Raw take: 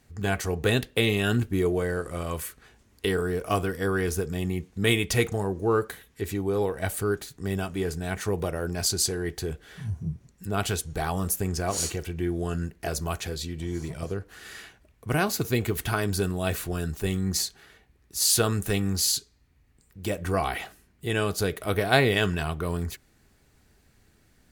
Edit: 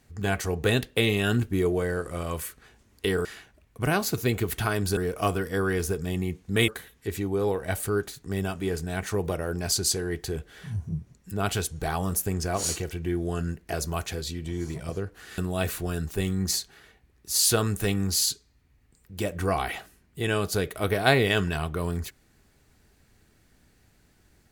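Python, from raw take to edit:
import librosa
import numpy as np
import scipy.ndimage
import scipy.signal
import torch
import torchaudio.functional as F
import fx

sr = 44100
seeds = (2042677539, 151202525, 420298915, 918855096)

y = fx.edit(x, sr, fx.cut(start_s=4.96, length_s=0.86),
    fx.move(start_s=14.52, length_s=1.72, to_s=3.25), tone=tone)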